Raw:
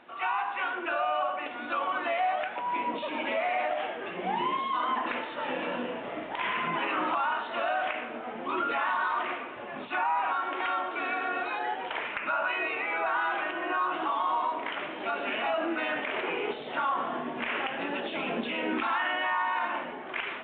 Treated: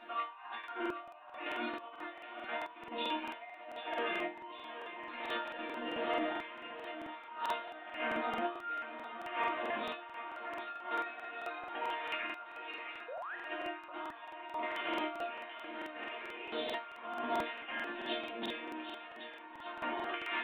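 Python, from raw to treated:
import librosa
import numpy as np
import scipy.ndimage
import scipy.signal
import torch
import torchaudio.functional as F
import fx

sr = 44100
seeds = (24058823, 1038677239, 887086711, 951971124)

p1 = fx.low_shelf(x, sr, hz=310.0, db=-6.5)
p2 = fx.over_compress(p1, sr, threshold_db=-38.0, ratio=-0.5)
p3 = fx.resonator_bank(p2, sr, root=58, chord='sus4', decay_s=0.3)
p4 = fx.spec_paint(p3, sr, seeds[0], shape='rise', start_s=13.08, length_s=0.28, low_hz=460.0, high_hz=2000.0, level_db=-57.0)
p5 = fx.doubler(p4, sr, ms=32.0, db=-8.0)
p6 = p5 + fx.echo_thinned(p5, sr, ms=771, feedback_pct=57, hz=370.0, wet_db=-10, dry=0)
p7 = fx.buffer_crackle(p6, sr, first_s=0.59, period_s=0.22, block=2048, kind='repeat')
y = p7 * librosa.db_to_amplitude(13.5)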